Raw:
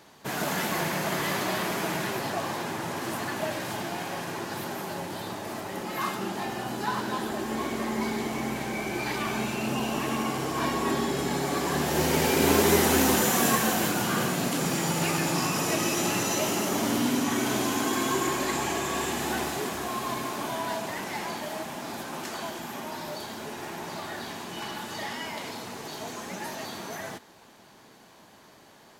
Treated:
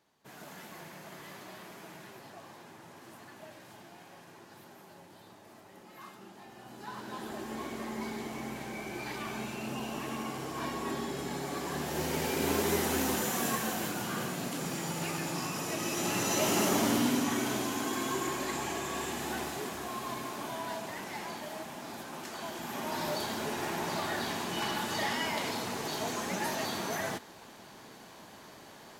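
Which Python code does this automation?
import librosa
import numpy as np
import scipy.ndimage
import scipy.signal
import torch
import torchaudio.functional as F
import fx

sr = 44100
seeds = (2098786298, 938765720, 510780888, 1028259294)

y = fx.gain(x, sr, db=fx.line((6.47, -19.0), (7.32, -8.5), (15.74, -8.5), (16.63, 0.5), (17.69, -6.5), (22.33, -6.5), (23.03, 2.5)))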